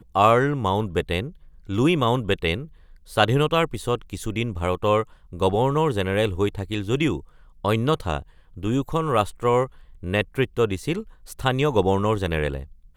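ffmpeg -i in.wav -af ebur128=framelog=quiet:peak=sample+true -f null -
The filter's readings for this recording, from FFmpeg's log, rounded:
Integrated loudness:
  I:         -23.4 LUFS
  Threshold: -33.7 LUFS
Loudness range:
  LRA:         1.9 LU
  Threshold: -44.0 LUFS
  LRA low:   -25.0 LUFS
  LRA high:  -23.1 LUFS
Sample peak:
  Peak:       -2.7 dBFS
True peak:
  Peak:       -2.7 dBFS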